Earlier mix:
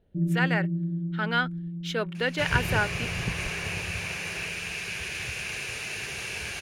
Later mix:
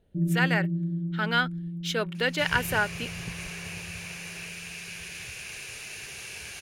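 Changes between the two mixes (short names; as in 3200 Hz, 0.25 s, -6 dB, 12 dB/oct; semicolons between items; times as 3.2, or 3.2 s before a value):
second sound -8.5 dB; master: add high shelf 4500 Hz +9 dB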